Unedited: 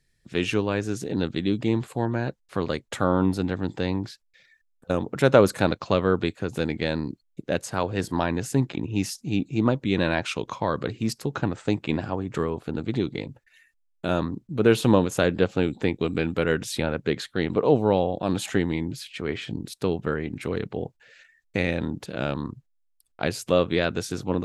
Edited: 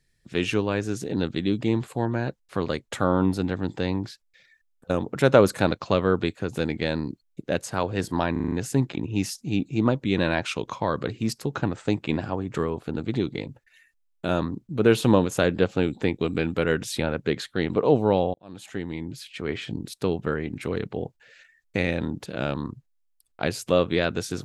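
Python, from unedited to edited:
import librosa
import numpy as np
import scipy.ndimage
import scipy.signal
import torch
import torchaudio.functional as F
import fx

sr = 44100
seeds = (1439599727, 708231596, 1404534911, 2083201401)

y = fx.edit(x, sr, fx.stutter(start_s=8.32, slice_s=0.04, count=6),
    fx.fade_in_span(start_s=18.14, length_s=1.2), tone=tone)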